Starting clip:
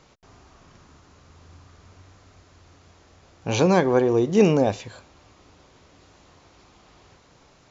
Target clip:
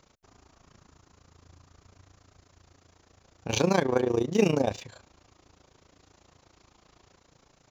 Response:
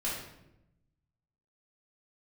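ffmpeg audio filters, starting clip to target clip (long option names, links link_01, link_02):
-filter_complex "[0:a]highshelf=frequency=3500:gain=11.5,asplit=2[link_01][link_02];[link_02]adynamicsmooth=sensitivity=7.5:basefreq=2100,volume=-1.5dB[link_03];[link_01][link_03]amix=inputs=2:normalize=0,tremolo=f=28:d=0.857,volume=-8dB"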